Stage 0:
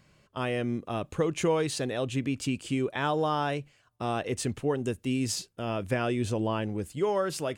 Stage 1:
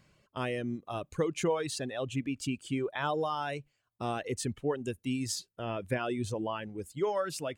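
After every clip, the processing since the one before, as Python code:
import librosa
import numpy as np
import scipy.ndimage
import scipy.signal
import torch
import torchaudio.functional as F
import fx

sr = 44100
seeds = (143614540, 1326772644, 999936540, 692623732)

y = fx.dereverb_blind(x, sr, rt60_s=1.9)
y = F.gain(torch.from_numpy(y), -2.5).numpy()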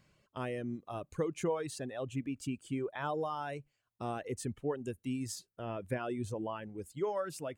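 y = fx.dynamic_eq(x, sr, hz=3800.0, q=0.74, threshold_db=-54.0, ratio=4.0, max_db=-7)
y = F.gain(torch.from_numpy(y), -3.5).numpy()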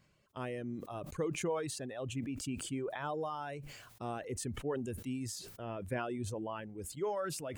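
y = fx.sustainer(x, sr, db_per_s=44.0)
y = F.gain(torch.from_numpy(y), -2.5).numpy()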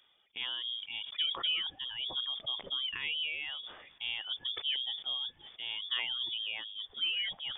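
y = fx.echo_wet_highpass(x, sr, ms=483, feedback_pct=59, hz=2600.0, wet_db=-22)
y = fx.freq_invert(y, sr, carrier_hz=3500)
y = F.gain(torch.from_numpy(y), 2.0).numpy()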